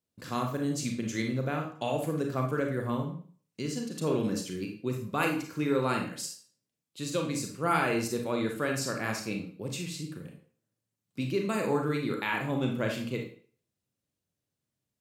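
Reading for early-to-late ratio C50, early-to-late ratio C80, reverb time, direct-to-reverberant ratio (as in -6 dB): 5.5 dB, 11.0 dB, 0.45 s, 1.5 dB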